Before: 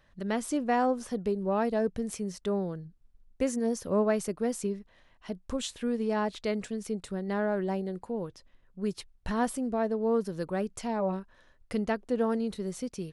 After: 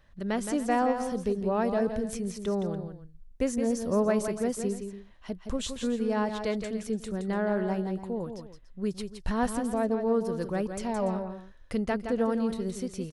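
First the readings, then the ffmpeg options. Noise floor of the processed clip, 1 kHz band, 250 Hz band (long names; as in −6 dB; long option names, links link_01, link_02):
−52 dBFS, +1.0 dB, +2.0 dB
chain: -filter_complex "[0:a]lowshelf=frequency=83:gain=8,asplit=2[link_01][link_02];[link_02]aecho=0:1:168|289:0.422|0.15[link_03];[link_01][link_03]amix=inputs=2:normalize=0"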